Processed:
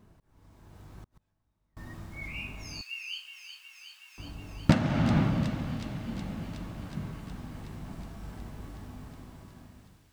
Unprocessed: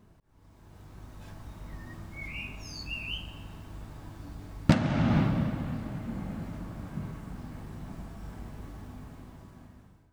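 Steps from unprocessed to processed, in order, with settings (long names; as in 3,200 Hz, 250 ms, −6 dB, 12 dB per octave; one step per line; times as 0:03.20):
0:02.81–0:04.18: Bessel high-pass filter 2,200 Hz, order 4
delay with a high-pass on its return 368 ms, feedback 77%, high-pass 2,900 Hz, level −7 dB
0:01.02–0:01.77: gate with flip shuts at −38 dBFS, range −33 dB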